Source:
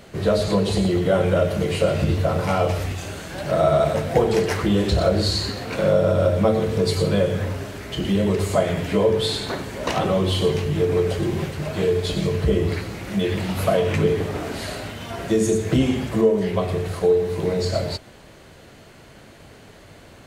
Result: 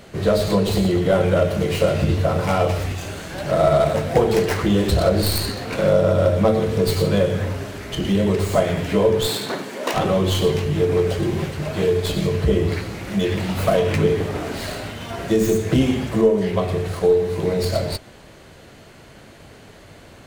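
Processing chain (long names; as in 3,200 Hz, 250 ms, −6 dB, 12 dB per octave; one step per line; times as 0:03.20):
stylus tracing distortion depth 0.13 ms
0:09.26–0:09.93: high-pass filter 99 Hz → 270 Hz 24 dB per octave
level +1.5 dB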